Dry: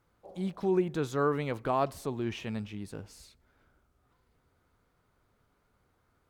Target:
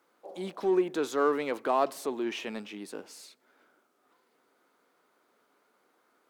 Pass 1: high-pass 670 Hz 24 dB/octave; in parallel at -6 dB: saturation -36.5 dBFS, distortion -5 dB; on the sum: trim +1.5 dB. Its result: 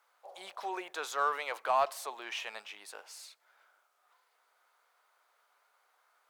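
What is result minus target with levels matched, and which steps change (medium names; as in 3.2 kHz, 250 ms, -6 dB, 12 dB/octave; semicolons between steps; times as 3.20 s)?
250 Hz band -17.0 dB
change: high-pass 270 Hz 24 dB/octave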